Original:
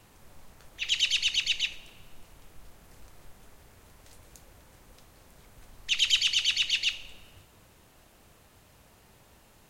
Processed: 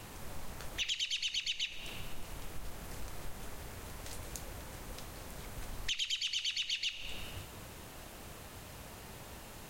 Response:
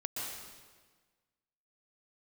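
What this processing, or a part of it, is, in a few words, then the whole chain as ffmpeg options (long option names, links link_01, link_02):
serial compression, peaks first: -af "acompressor=threshold=-38dB:ratio=4,acompressor=threshold=-44dB:ratio=2.5,volume=9dB"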